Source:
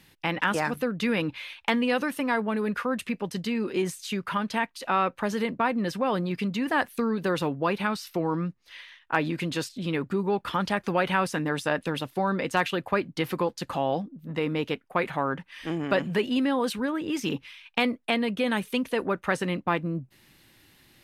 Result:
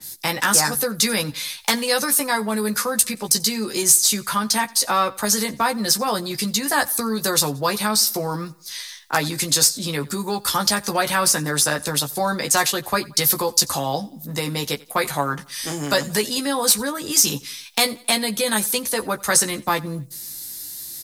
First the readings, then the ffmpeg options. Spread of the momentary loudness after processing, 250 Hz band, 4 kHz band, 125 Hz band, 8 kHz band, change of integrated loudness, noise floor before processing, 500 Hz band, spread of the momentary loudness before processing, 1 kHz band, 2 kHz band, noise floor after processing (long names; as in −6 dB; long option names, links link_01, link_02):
11 LU, +1.0 dB, +14.0 dB, +3.0 dB, +26.5 dB, +8.0 dB, −62 dBFS, +2.5 dB, 6 LU, +5.0 dB, +5.0 dB, −43 dBFS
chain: -filter_complex "[0:a]acrossover=split=200|440|3900[link_01][link_02][link_03][link_04];[link_02]acompressor=threshold=-42dB:ratio=6[link_05];[link_01][link_05][link_03][link_04]amix=inputs=4:normalize=0,aexciter=amount=8.3:drive=8.9:freq=4300,acrusher=bits=9:mode=log:mix=0:aa=0.000001,asoftclip=type=tanh:threshold=-7dB,asplit=2[link_06][link_07];[link_07]adelay=14,volume=-5dB[link_08];[link_06][link_08]amix=inputs=2:normalize=0,aecho=1:1:89|178|267:0.0708|0.0311|0.0137,adynamicequalizer=threshold=0.0158:dfrequency=3400:dqfactor=0.7:tfrequency=3400:tqfactor=0.7:attack=5:release=100:ratio=0.375:range=3:mode=cutabove:tftype=highshelf,volume=4.5dB"